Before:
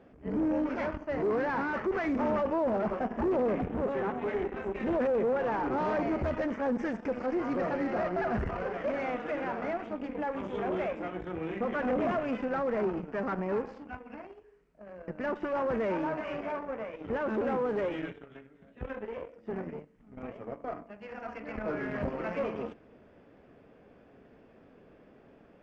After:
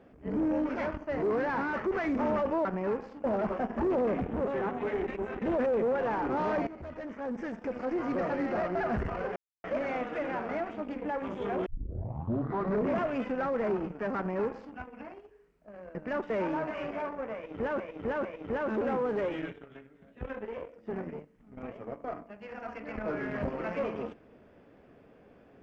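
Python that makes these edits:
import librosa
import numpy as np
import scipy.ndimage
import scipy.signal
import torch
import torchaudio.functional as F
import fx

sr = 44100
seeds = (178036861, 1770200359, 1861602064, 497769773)

y = fx.edit(x, sr, fx.reverse_span(start_s=4.49, length_s=0.34),
    fx.fade_in_from(start_s=6.08, length_s=1.45, floor_db=-16.0),
    fx.insert_silence(at_s=8.77, length_s=0.28),
    fx.tape_start(start_s=10.79, length_s=1.35),
    fx.duplicate(start_s=13.3, length_s=0.59, to_s=2.65),
    fx.cut(start_s=15.43, length_s=0.37),
    fx.repeat(start_s=16.85, length_s=0.45, count=3), tone=tone)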